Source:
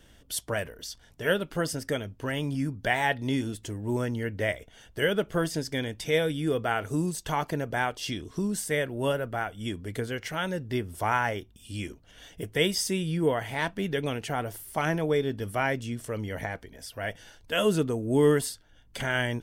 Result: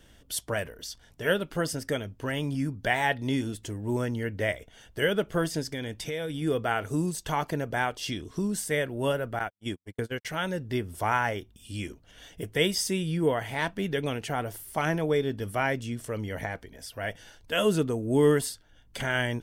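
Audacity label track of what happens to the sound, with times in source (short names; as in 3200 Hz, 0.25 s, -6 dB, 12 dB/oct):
5.650000	6.420000	compressor, threshold -29 dBFS
9.390000	10.250000	gate -34 dBFS, range -55 dB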